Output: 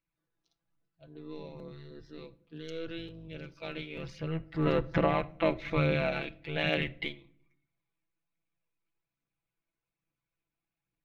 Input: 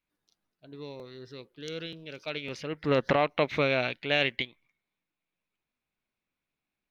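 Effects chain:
sub-octave generator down 1 octave, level −1 dB
high-shelf EQ 3,400 Hz −10 dB
phase shifter 1.9 Hz, delay 3.4 ms, feedback 33%
time stretch by overlap-add 1.6×, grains 32 ms
convolution reverb RT60 0.60 s, pre-delay 7 ms, DRR 15.5 dB
level −2 dB

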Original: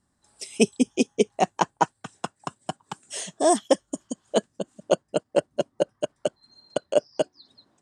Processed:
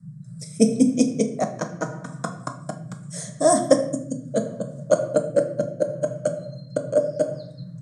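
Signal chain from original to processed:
rectangular room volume 210 cubic metres, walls mixed, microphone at 0.52 metres
rotating-speaker cabinet horn 0.75 Hz
phaser with its sweep stopped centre 570 Hz, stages 8
noise in a band 120–180 Hz −43 dBFS
level +5 dB

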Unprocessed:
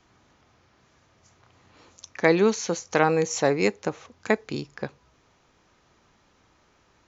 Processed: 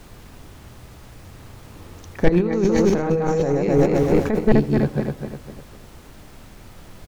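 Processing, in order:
feedback delay that plays each chunk backwards 126 ms, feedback 61%, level −1 dB
in parallel at −6 dB: bit-depth reduction 6 bits, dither triangular
0:02.28–0:04.39: on the sum: compressor whose output falls as the input rises −23 dBFS, ratio −1
soft clipping −13 dBFS, distortion −12 dB
spectral tilt −4 dB per octave
on a send: single-tap delay 81 ms −20.5 dB

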